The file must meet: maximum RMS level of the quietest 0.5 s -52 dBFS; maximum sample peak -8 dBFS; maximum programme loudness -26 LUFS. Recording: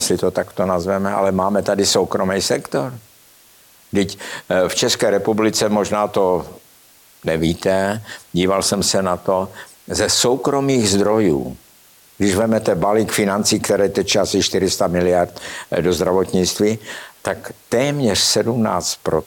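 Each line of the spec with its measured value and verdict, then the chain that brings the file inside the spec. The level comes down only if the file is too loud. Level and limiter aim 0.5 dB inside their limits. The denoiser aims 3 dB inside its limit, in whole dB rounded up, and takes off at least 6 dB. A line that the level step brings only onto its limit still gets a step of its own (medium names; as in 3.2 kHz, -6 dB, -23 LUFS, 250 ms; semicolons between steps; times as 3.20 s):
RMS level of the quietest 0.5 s -49 dBFS: fail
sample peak -5.5 dBFS: fail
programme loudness -18.0 LUFS: fail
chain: trim -8.5 dB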